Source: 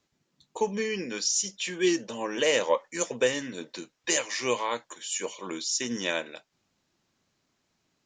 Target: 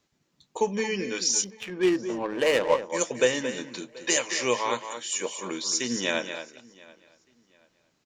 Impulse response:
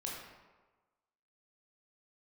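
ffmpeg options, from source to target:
-filter_complex "[0:a]asplit=2[a][b];[b]aecho=0:1:225:0.335[c];[a][c]amix=inputs=2:normalize=0,asettb=1/sr,asplit=3[d][e][f];[d]atrim=end=1.444[g];[e]atrim=start=1.44:end=2.9,asetpts=PTS-STARTPTS,afade=t=in:d=0.004:c=qsin,afade=t=out:st=1.456:d=0.004:c=qsin,adynamicsmooth=sensitivity=2:basefreq=860[h];[f]atrim=start=2.896[i];[g][h]acrossfade=d=0.004:c1=hsin:c2=qsin[j];[j][i]acrossfade=d=0.004:c1=qsin:c2=hsin,asplit=2[k][l];[l]adelay=732,lowpass=f=4.8k:p=1,volume=-23dB,asplit=2[m][n];[n]adelay=732,lowpass=f=4.8k:p=1,volume=0.29[o];[m][o]amix=inputs=2:normalize=0[p];[k][p]amix=inputs=2:normalize=0,volume=2dB"

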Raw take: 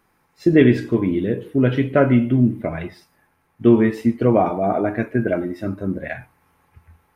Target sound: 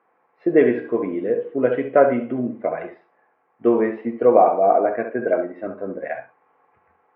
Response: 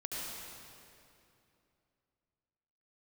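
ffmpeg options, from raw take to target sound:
-filter_complex "[0:a]highpass=310,equalizer=f=490:t=q:w=4:g=9,equalizer=f=720:t=q:w=4:g=8,equalizer=f=1.1k:t=q:w=4:g=5,lowpass=f=2.3k:w=0.5412,lowpass=f=2.3k:w=1.3066[a];[1:a]atrim=start_sample=2205,atrim=end_sample=3087[b];[a][b]afir=irnorm=-1:irlink=0,volume=1.5dB"

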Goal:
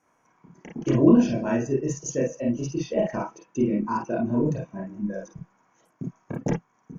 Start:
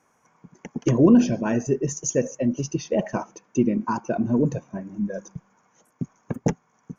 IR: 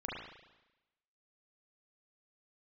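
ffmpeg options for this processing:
-filter_complex "[1:a]atrim=start_sample=2205,atrim=end_sample=3969,asetrate=57330,aresample=44100[a];[0:a][a]afir=irnorm=-1:irlink=0"

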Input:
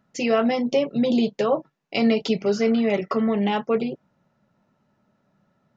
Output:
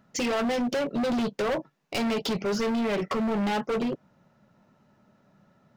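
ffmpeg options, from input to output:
-filter_complex "[0:a]asplit=2[a][b];[b]acompressor=threshold=-30dB:ratio=6,volume=-0.5dB[c];[a][c]amix=inputs=2:normalize=0,asoftclip=type=hard:threshold=-23.5dB,volume=-1dB"

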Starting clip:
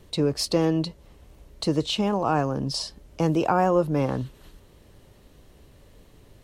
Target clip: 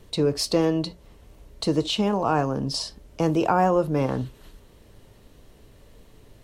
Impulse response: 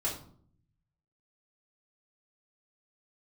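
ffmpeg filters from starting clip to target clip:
-filter_complex "[0:a]asplit=2[a][b];[1:a]atrim=start_sample=2205,atrim=end_sample=3528[c];[b][c]afir=irnorm=-1:irlink=0,volume=-17dB[d];[a][d]amix=inputs=2:normalize=0"

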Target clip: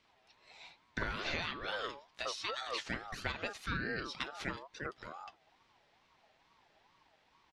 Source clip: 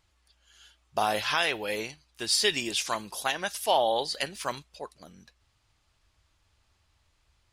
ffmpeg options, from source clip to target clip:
-filter_complex "[0:a]acompressor=threshold=-39dB:ratio=5,highpass=100,lowpass=3.1k,acrossover=split=580[a][b];[a]adelay=50[c];[c][b]amix=inputs=2:normalize=0,aeval=exprs='val(0)*sin(2*PI*870*n/s+870*0.2/2.3*sin(2*PI*2.3*n/s))':c=same,volume=8dB"

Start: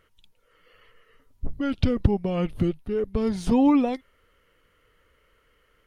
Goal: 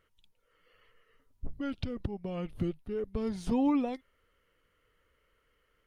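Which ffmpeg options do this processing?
-filter_complex "[0:a]asettb=1/sr,asplit=3[a][b][c];[a]atrim=end=1.694[d];[b]atrim=start=1.69:end=2.53,asetpts=PTS-STARTPTS,afade=t=in:d=0.004:c=qsin,afade=t=out:st=0.836:d=0.004:c=qsin,acompressor=threshold=-24dB:ratio=3[e];[c]atrim=start=2.526[f];[d][e]acrossfade=d=0.004:c1=hsin:c2=qsin[g];[g][f]acrossfade=d=0.004:c1=qsin:c2=hsin,volume=-8.5dB"

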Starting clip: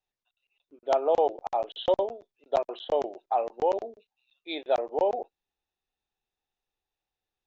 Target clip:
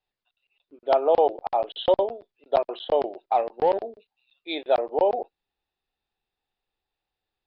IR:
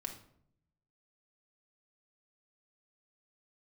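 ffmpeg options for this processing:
-filter_complex "[0:a]asettb=1/sr,asplit=3[a][b][c];[a]atrim=end=3.254[d];[b]atrim=start=3.25:end=3.83,asetpts=PTS-STARTPTS,afade=t=in:d=0.004:c=qsin,afade=t=out:st=0.576:d=0.004:c=qsin,aeval=exprs='0.2*(cos(1*acos(clip(val(0)/0.2,-1,1)))-cos(1*PI/2))+0.00562*(cos(7*acos(clip(val(0)/0.2,-1,1)))-cos(7*PI/2))':c=same[e];[c]atrim=start=3.826[f];[d][e]acrossfade=d=0.004:c1=hsin:c2=qsin[g];[g][f]acrossfade=d=0.004:c1=qsin:c2=hsin,aresample=11025,aresample=44100,volume=4dB"

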